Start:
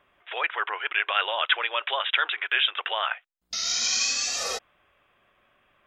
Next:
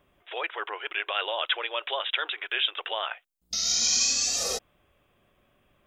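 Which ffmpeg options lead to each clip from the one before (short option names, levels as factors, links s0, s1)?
-af "equalizer=f=1600:t=o:w=3:g=-14.5,volume=2.37"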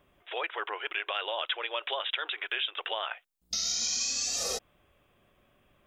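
-af "acompressor=threshold=0.0398:ratio=5"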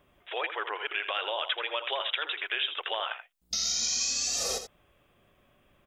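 -af "aecho=1:1:82:0.316,volume=1.12"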